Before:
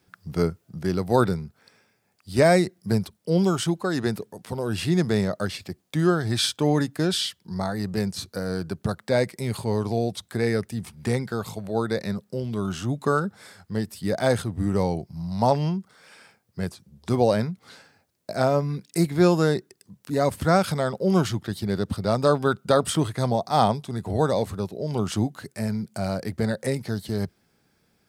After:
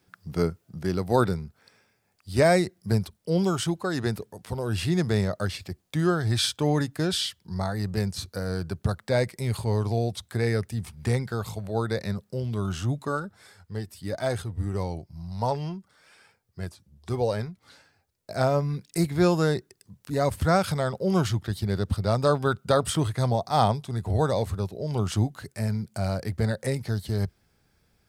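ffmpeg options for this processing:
-filter_complex "[0:a]asplit=3[a][b][c];[a]afade=t=out:st=13.02:d=0.02[d];[b]flanger=delay=2:depth=1.6:regen=58:speed=1.1:shape=triangular,afade=t=in:st=13.02:d=0.02,afade=t=out:st=18.3:d=0.02[e];[c]afade=t=in:st=18.3:d=0.02[f];[d][e][f]amix=inputs=3:normalize=0,deesser=0.35,asubboost=boost=4:cutoff=96,volume=-1.5dB"

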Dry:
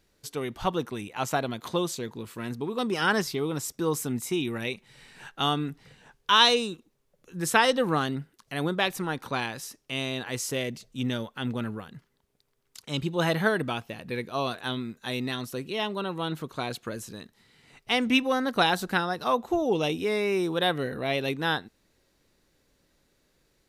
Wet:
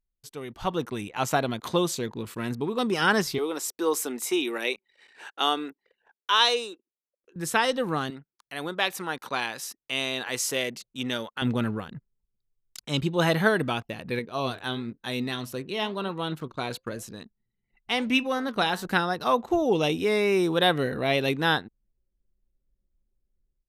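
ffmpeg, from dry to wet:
-filter_complex "[0:a]asettb=1/sr,asplit=3[a][b][c];[a]atrim=end=3.384[d];[b]atrim=start=3.38:end=7.36,asetpts=PTS-STARTPTS,afade=t=in:d=0.004:c=qsin,afade=t=out:st=3.976:d=0.004:c=qsin,highpass=f=320:w=0.5412,highpass=f=320:w=1.3066[e];[c]atrim=start=7.356[f];[d][e]acrossfade=d=0.004:c1=hsin:c2=qsin[g];[g][f]acrossfade=d=0.004:c1=qsin:c2=hsin,asettb=1/sr,asplit=3[h][i][j];[h]atrim=end=8.104[k];[i]atrim=start=8.1:end=11.42,asetpts=PTS-STARTPTS,afade=t=in:d=0.004:c=qsin,afade=t=out:st=3.316:d=0.004:c=qsin,highpass=f=530:p=1[l];[j]atrim=start=11.416[m];[k][l]acrossfade=d=0.004:c1=hsin:c2=qsin[n];[n][m]acrossfade=d=0.004:c1=qsin:c2=hsin,asettb=1/sr,asplit=3[o][p][q];[o]atrim=end=14.194[r];[p]atrim=start=14.19:end=18.85,asetpts=PTS-STARTPTS,afade=t=in:d=0.004:c=qsin,afade=t=out:st=4.656:d=0.004:c=qsin,flanger=delay=4.1:depth=6.4:regen=83:speed=1:shape=sinusoidal[s];[q]atrim=start=18.846[t];[r][s]acrossfade=d=0.004:c1=hsin:c2=qsin[u];[u][t]acrossfade=d=0.004:c1=qsin:c2=hsin,anlmdn=0.00398,dynaudnorm=f=470:g=3:m=12dB,volume=-7dB"

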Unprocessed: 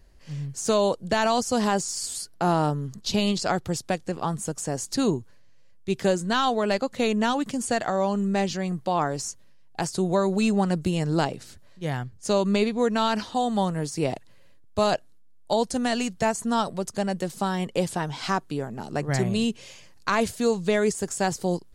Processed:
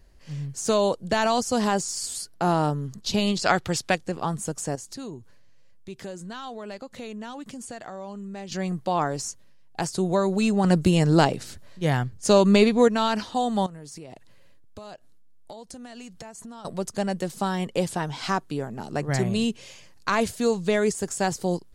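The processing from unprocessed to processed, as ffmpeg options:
-filter_complex "[0:a]asettb=1/sr,asplit=3[a][b][c];[a]atrim=end=3.434[d];[b]atrim=start=3.43:end=3.95,asetpts=PTS-STARTPTS,afade=t=in:d=0.004:c=qsin,afade=t=out:st=0.516:d=0.004:c=qsin,equalizer=f=2.4k:t=o:w=2.7:g=9[e];[c]atrim=start=3.946[f];[d][e]acrossfade=d=0.004:c1=hsin:c2=qsin[g];[g][f]acrossfade=d=0.004:c1=qsin:c2=hsin,asettb=1/sr,asplit=3[h][i][j];[h]atrim=end=4.754[k];[i]atrim=start=4.75:end=8.52,asetpts=PTS-STARTPTS,afade=t=in:d=0.004:c=qsin,afade=t=out:st=3.766:d=0.004:c=qsin,acompressor=threshold=-40dB:ratio=2.5:attack=3.2:release=140:knee=1:detection=peak[l];[j]atrim=start=8.516[m];[k][l]acrossfade=d=0.004:c1=hsin:c2=qsin[n];[n][m]acrossfade=d=0.004:c1=qsin:c2=hsin,asettb=1/sr,asplit=3[o][p][q];[o]atrim=end=10.644[r];[p]atrim=start=10.64:end=12.88,asetpts=PTS-STARTPTS,afade=t=in:d=0.004:c=qsin,afade=t=out:st=2.236:d=0.004:c=qsin,acontrast=46[s];[q]atrim=start=12.876[t];[r][s]acrossfade=d=0.004:c1=hsin:c2=qsin[u];[u][t]acrossfade=d=0.004:c1=qsin:c2=hsin,asettb=1/sr,asplit=3[v][w][x];[v]atrim=end=13.664[y];[w]atrim=start=13.66:end=16.65,asetpts=PTS-STARTPTS,afade=t=in:d=0.004:c=qsin,afade=t=out:st=2.986:d=0.004:c=qsin,acompressor=threshold=-37dB:ratio=16:attack=3.2:release=140:knee=1:detection=peak[z];[x]atrim=start=16.646[aa];[y][z]acrossfade=d=0.004:c1=hsin:c2=qsin[ab];[ab][aa]acrossfade=d=0.004:c1=qsin:c2=hsin"

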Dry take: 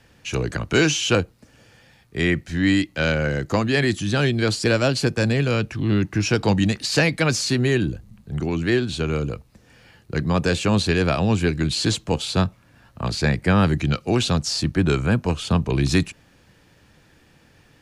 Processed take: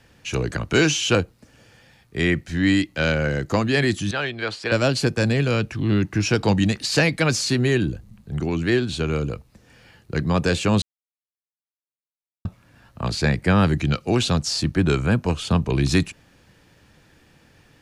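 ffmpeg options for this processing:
-filter_complex "[0:a]asettb=1/sr,asplit=3[a][b][c];[a]atrim=end=4.114[d];[b]atrim=start=4.11:end=4.72,asetpts=PTS-STARTPTS,afade=t=in:d=0.004:c=qsin,afade=t=out:st=0.606:d=0.004:c=qsin,acrossover=split=520 3800:gain=0.2 1 0.141[e][f][g];[e][f][g]amix=inputs=3:normalize=0[h];[c]atrim=start=4.716[i];[d][h]acrossfade=d=0.004:c1=hsin:c2=qsin[j];[j][i]acrossfade=d=0.004:c1=qsin:c2=hsin,asplit=3[k][l][m];[k]atrim=end=10.82,asetpts=PTS-STARTPTS,afade=t=out:st=10.816:d=0.004:c=hsin[n];[l]atrim=start=10.82:end=12.45,asetpts=PTS-STARTPTS,volume=0[o];[m]atrim=start=12.45,asetpts=PTS-STARTPTS,afade=t=in:d=0.004:c=hsin[p];[n][o][p]concat=n=3:v=0:a=1"

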